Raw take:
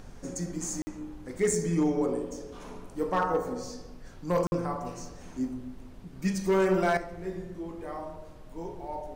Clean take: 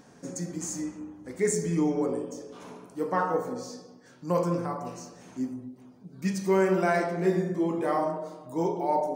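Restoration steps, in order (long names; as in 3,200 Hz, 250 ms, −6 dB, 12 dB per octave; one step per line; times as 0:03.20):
clipped peaks rebuilt −18.5 dBFS
repair the gap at 0:00.82/0:04.47, 50 ms
noise reduction from a noise print 6 dB
level correction +11.5 dB, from 0:06.97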